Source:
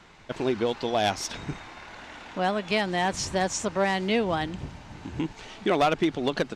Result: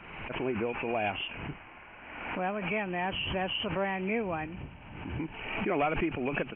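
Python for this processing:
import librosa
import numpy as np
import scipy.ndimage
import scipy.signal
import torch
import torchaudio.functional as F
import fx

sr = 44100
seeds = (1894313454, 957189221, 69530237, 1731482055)

y = fx.freq_compress(x, sr, knee_hz=2200.0, ratio=4.0)
y = fx.pre_swell(y, sr, db_per_s=44.0)
y = F.gain(torch.from_numpy(y), -7.0).numpy()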